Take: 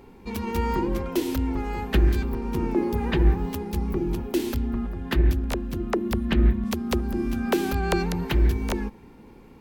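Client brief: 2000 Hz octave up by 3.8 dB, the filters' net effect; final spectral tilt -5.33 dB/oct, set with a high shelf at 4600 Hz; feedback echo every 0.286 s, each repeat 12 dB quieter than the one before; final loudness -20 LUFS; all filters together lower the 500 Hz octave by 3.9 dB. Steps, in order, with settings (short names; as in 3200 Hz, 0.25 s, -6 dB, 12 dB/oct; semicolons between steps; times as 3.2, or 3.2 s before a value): bell 500 Hz -6.5 dB; bell 2000 Hz +4.5 dB; high shelf 4600 Hz +4 dB; feedback echo 0.286 s, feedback 25%, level -12 dB; gain +6.5 dB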